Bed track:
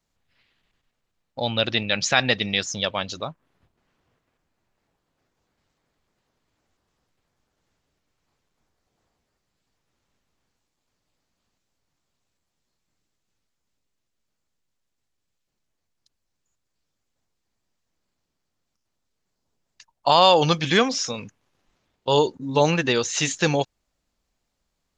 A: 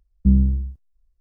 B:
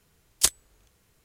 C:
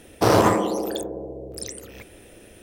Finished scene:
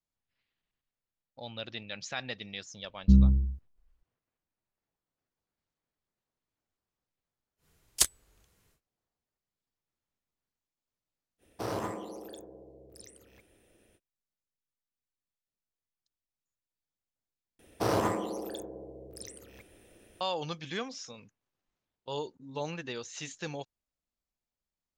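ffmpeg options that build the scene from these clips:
-filter_complex "[3:a]asplit=2[a][b];[0:a]volume=-17.5dB,asplit=2[c][d];[c]atrim=end=17.594[e];[b]atrim=end=2.62,asetpts=PTS-STARTPTS,volume=-11.5dB[f];[d]atrim=start=20.206[g];[1:a]atrim=end=1.2,asetpts=PTS-STARTPTS,volume=-4dB,afade=t=in:d=0.004:c=hsin,afade=t=out:st=1.196:d=0.004:c=hsin,adelay=2830[h];[2:a]atrim=end=1.24,asetpts=PTS-STARTPTS,volume=-4dB,afade=t=in:d=0.1,afade=t=out:st=1.14:d=0.1,adelay=7570[i];[a]atrim=end=2.62,asetpts=PTS-STARTPTS,volume=-18dB,afade=t=in:d=0.05,afade=t=out:st=2.57:d=0.05,adelay=501858S[j];[e][f]acrossfade=d=0.004:c1=hsin:c2=hsin[k];[k][g]acrossfade=d=0.004:c1=hsin:c2=hsin[l];[l][h][i][j]amix=inputs=4:normalize=0"

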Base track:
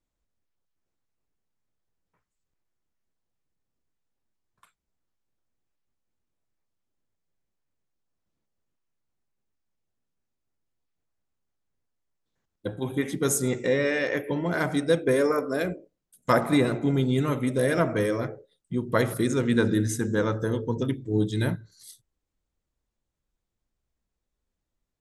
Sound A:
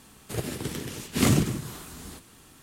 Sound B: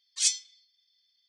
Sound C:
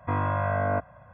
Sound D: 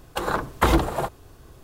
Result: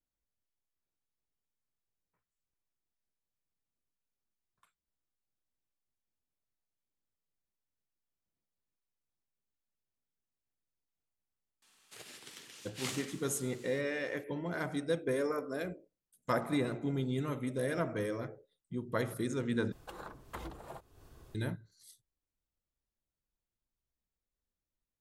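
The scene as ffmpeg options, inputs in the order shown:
-filter_complex "[0:a]volume=-10.5dB[a];[1:a]bandpass=f=3.8k:t=q:w=0.55:csg=0[b];[4:a]acompressor=threshold=-41dB:ratio=2.5:attack=15:release=212:knee=1:detection=rms[c];[a]asplit=2[d][e];[d]atrim=end=19.724[f];[c]atrim=end=1.63,asetpts=PTS-STARTPTS,volume=-9dB[g];[e]atrim=start=21.346[h];[b]atrim=end=2.62,asetpts=PTS-STARTPTS,volume=-9.5dB,afade=t=in:d=0.004:c=hsin,afade=t=out:st=2.616:d=0.004:c=hsin,adelay=512442S[i];[f][g]acrossfade=d=0.004:c1=hsin:c2=hsin[j];[j][h]acrossfade=d=0.004:c1=hsin:c2=hsin[k];[k][i]amix=inputs=2:normalize=0"

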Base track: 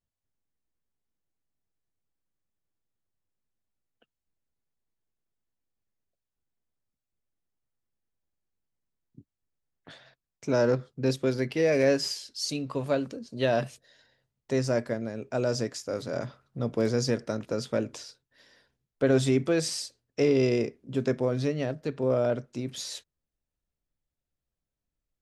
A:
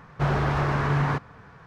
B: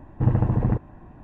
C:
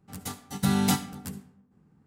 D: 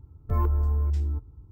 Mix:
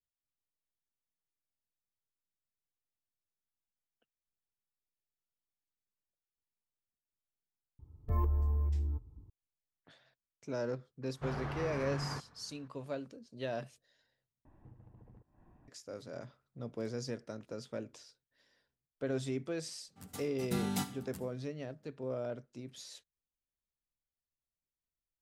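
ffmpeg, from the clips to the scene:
-filter_complex "[0:a]volume=-13dB[a];[4:a]asuperstop=centerf=1400:order=4:qfactor=5.7[b];[2:a]acompressor=threshold=-33dB:ratio=12:attack=0.2:release=311:knee=1:detection=peak[c];[a]asplit=2[d][e];[d]atrim=end=14.454[f];[c]atrim=end=1.23,asetpts=PTS-STARTPTS,volume=-17.5dB[g];[e]atrim=start=15.676[h];[b]atrim=end=1.51,asetpts=PTS-STARTPTS,volume=-7dB,afade=t=in:d=0.004:c=hsin,afade=t=out:st=1.506:d=0.004:c=hsin,adelay=7790[i];[1:a]atrim=end=1.66,asetpts=PTS-STARTPTS,volume=-15.5dB,afade=t=in:d=0.004:c=hsin,afade=t=out:st=1.656:d=0.004:c=hsin,adelay=11020[j];[3:a]atrim=end=2.06,asetpts=PTS-STARTPTS,volume=-11dB,afade=t=in:d=0.004:c=hsin,afade=t=out:st=2.056:d=0.004:c=hsin,adelay=876708S[k];[f][g]acrossfade=d=0.004:c1=hsin:c2=hsin[l];[l][h]acrossfade=d=0.004:c1=hsin:c2=hsin[m];[m][i][j][k]amix=inputs=4:normalize=0"

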